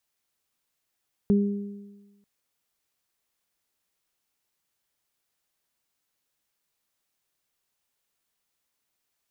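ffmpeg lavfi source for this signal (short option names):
-f lavfi -i "aevalsrc='0.158*pow(10,-3*t/1.23)*sin(2*PI*202*t)+0.0668*pow(10,-3*t/1.12)*sin(2*PI*404*t)':d=0.94:s=44100"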